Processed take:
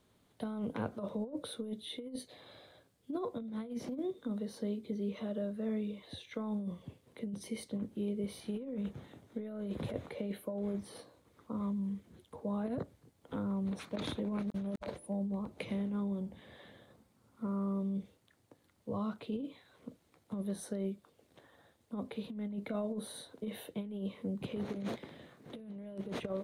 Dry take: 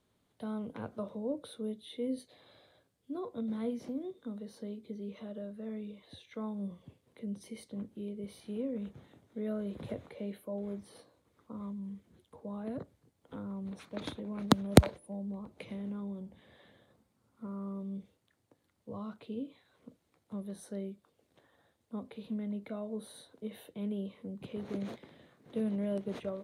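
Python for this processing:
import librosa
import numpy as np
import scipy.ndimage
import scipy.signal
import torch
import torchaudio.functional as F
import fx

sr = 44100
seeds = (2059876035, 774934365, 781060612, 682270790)

y = fx.over_compress(x, sr, threshold_db=-39.0, ratio=-0.5)
y = y * librosa.db_to_amplitude(2.0)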